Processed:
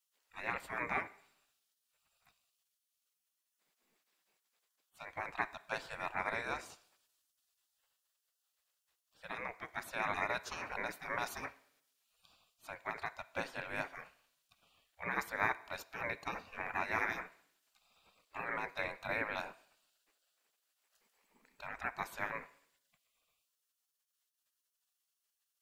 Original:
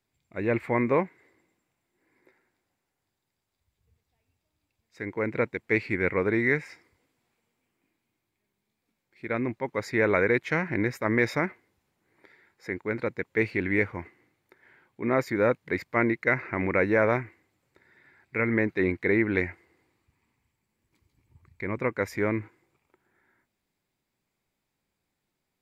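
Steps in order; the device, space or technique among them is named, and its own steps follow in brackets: spectral gate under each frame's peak -20 dB weak; dynamic bell 2.8 kHz, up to -6 dB, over -55 dBFS, Q 1.2; filtered reverb send (on a send: high-pass 390 Hz 6 dB/octave + low-pass 4.7 kHz + reverberation RT60 0.70 s, pre-delay 22 ms, DRR 16 dB); on the sum: trim +5 dB

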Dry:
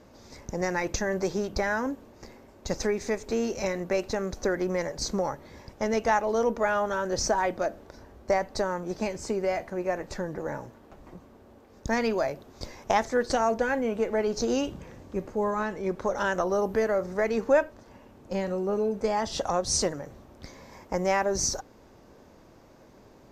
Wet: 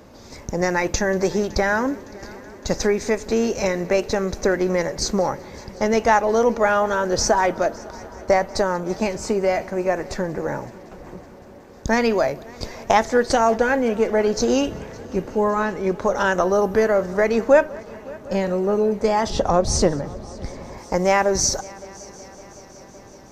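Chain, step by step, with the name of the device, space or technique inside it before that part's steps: multi-head tape echo (multi-head delay 187 ms, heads first and third, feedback 72%, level -24 dB; wow and flutter 21 cents); 19.30–20.78 s: tilt EQ -2 dB/octave; trim +7.5 dB

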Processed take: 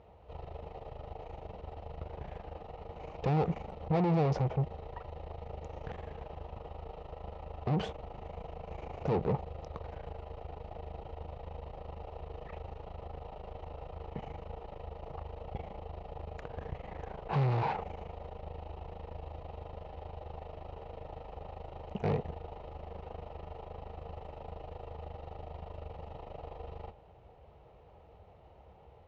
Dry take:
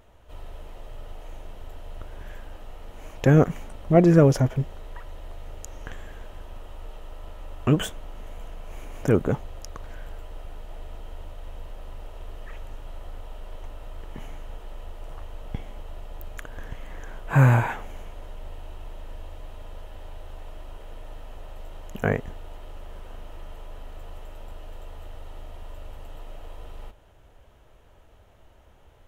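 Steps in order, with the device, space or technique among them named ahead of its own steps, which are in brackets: guitar amplifier (valve stage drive 31 dB, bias 0.65; tone controls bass +9 dB, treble 0 dB; cabinet simulation 88–4200 Hz, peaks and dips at 110 Hz -7 dB, 260 Hz -9 dB, 470 Hz +8 dB, 790 Hz +9 dB, 1.6 kHz -10 dB, 3.3 kHz -7 dB)

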